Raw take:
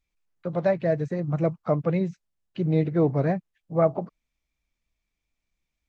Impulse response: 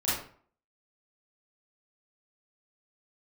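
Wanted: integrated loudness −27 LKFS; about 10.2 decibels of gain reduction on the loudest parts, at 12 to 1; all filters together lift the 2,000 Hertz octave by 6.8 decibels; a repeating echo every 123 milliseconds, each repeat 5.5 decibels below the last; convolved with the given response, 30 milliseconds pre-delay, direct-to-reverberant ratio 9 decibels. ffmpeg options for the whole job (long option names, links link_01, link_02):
-filter_complex "[0:a]equalizer=frequency=2000:width_type=o:gain=8,acompressor=threshold=-26dB:ratio=12,aecho=1:1:123|246|369|492|615|738|861:0.531|0.281|0.149|0.079|0.0419|0.0222|0.0118,asplit=2[link_01][link_02];[1:a]atrim=start_sample=2205,adelay=30[link_03];[link_02][link_03]afir=irnorm=-1:irlink=0,volume=-18.5dB[link_04];[link_01][link_04]amix=inputs=2:normalize=0,volume=4dB"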